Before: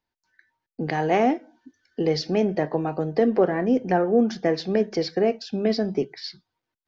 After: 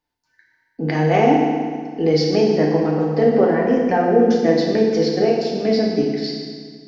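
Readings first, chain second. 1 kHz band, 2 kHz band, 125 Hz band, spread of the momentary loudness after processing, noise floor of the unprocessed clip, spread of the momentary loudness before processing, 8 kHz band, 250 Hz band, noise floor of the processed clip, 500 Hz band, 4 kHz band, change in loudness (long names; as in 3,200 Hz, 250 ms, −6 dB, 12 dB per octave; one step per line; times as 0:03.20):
+6.0 dB, +5.0 dB, +8.0 dB, 9 LU, below −85 dBFS, 9 LU, can't be measured, +6.0 dB, −68 dBFS, +6.5 dB, +6.0 dB, +6.0 dB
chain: feedback delay network reverb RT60 1.8 s, low-frequency decay 1.2×, high-frequency decay 0.9×, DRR −2.5 dB
level +1 dB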